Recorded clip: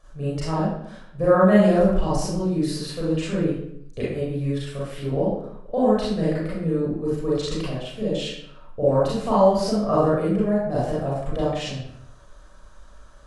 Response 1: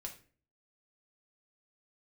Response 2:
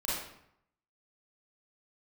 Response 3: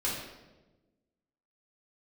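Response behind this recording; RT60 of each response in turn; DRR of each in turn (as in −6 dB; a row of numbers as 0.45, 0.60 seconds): 2; 0.40, 0.75, 1.1 seconds; 1.5, −8.5, −7.5 decibels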